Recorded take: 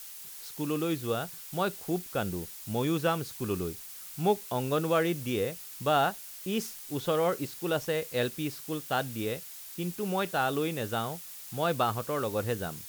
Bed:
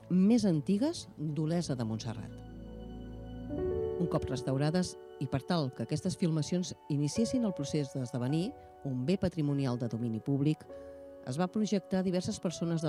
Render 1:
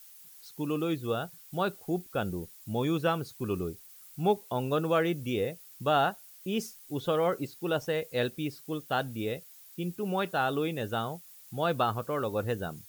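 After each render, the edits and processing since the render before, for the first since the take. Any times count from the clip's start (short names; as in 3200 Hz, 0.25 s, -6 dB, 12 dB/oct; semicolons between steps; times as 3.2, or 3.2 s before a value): denoiser 11 dB, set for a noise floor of -45 dBFS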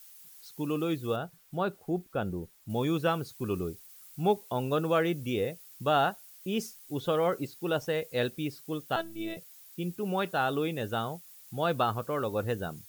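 1.16–2.7 high shelf 2700 Hz -9.5 dB; 8.96–9.37 robotiser 330 Hz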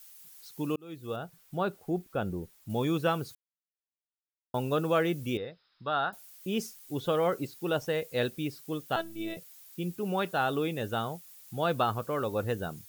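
0.76–1.4 fade in; 3.35–4.54 mute; 5.37–6.13 rippled Chebyshev low-pass 5200 Hz, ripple 9 dB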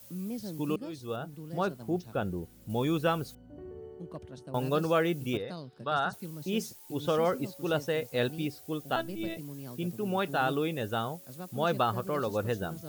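add bed -11.5 dB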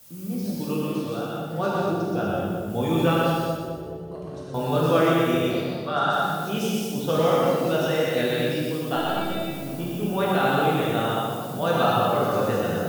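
on a send: split-band echo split 870 Hz, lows 0.211 s, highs 0.123 s, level -5 dB; on the sum: non-linear reverb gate 0.27 s flat, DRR -5.5 dB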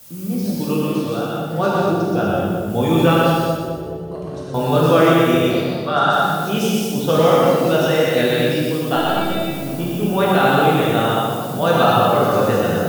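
gain +7 dB; limiter -2 dBFS, peak gain reduction 1.5 dB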